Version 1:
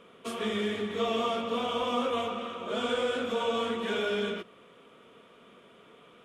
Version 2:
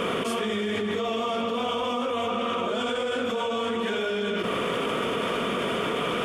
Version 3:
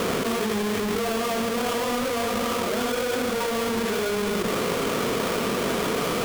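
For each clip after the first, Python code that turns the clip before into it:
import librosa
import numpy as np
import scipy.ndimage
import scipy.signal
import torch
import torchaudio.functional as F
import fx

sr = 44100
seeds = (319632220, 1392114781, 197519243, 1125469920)

y1 = fx.notch(x, sr, hz=3900.0, q=9.7)
y1 = fx.env_flatten(y1, sr, amount_pct=100)
y1 = y1 * 10.0 ** (-1.5 / 20.0)
y2 = fx.halfwave_hold(y1, sr)
y2 = y2 * 10.0 ** (-2.5 / 20.0)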